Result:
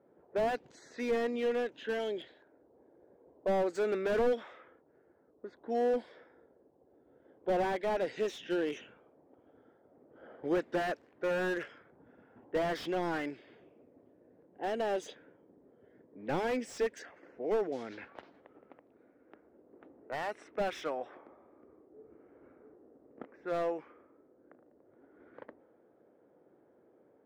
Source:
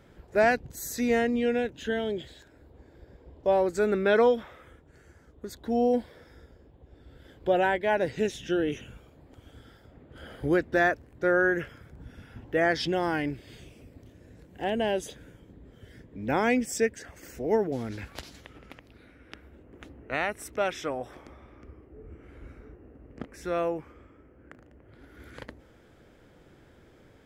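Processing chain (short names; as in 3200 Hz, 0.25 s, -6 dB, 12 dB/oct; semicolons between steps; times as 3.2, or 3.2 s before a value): low-pass opened by the level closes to 610 Hz, open at -25 dBFS; BPF 360–6500 Hz; slew limiter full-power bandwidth 35 Hz; gain -2.5 dB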